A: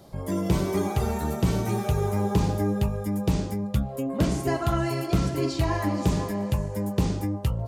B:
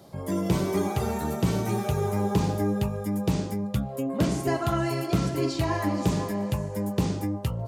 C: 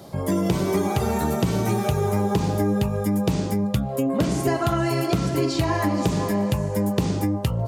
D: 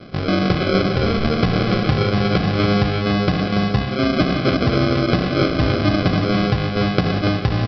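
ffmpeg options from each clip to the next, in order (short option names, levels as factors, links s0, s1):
-af "highpass=93"
-af "acompressor=threshold=0.0501:ratio=6,volume=2.51"
-af "aresample=11025,acrusher=samples=12:mix=1:aa=0.000001,aresample=44100,aecho=1:1:285:0.447,volume=1.58"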